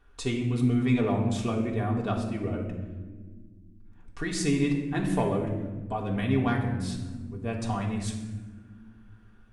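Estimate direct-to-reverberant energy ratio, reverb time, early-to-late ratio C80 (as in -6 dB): -1.5 dB, not exponential, 7.5 dB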